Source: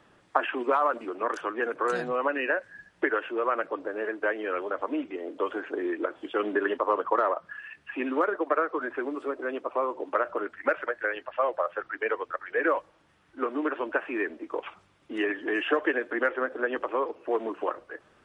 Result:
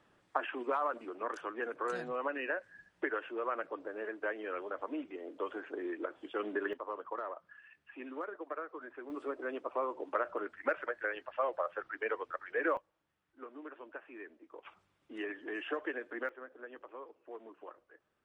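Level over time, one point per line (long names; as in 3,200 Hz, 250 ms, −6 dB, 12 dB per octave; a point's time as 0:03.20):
−9 dB
from 0:06.73 −15.5 dB
from 0:09.10 −7 dB
from 0:12.77 −19 dB
from 0:14.65 −12 dB
from 0:16.29 −20 dB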